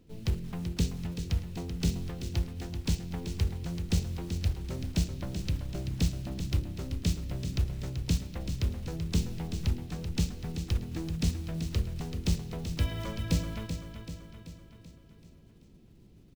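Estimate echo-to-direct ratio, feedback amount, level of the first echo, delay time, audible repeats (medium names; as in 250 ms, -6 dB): -7.0 dB, 54%, -8.5 dB, 384 ms, 5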